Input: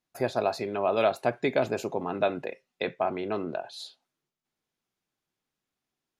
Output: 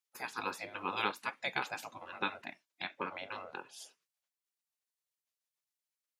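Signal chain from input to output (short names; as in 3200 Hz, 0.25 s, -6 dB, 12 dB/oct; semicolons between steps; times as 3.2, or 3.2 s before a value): spectral gate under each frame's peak -15 dB weak; HPF 200 Hz 12 dB/oct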